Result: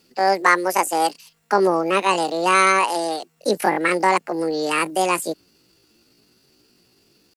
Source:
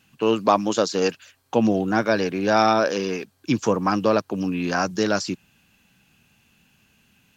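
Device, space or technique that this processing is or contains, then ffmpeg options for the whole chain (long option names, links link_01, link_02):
chipmunk voice: -af "asetrate=76340,aresample=44100,atempo=0.577676,volume=2dB"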